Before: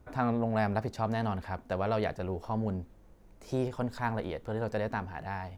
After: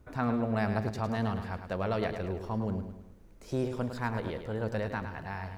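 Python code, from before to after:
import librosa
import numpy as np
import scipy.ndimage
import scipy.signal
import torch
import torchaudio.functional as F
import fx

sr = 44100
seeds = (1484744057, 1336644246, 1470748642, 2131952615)

p1 = fx.peak_eq(x, sr, hz=770.0, db=-4.5, octaves=0.7)
y = p1 + fx.echo_feedback(p1, sr, ms=106, feedback_pct=47, wet_db=-8.5, dry=0)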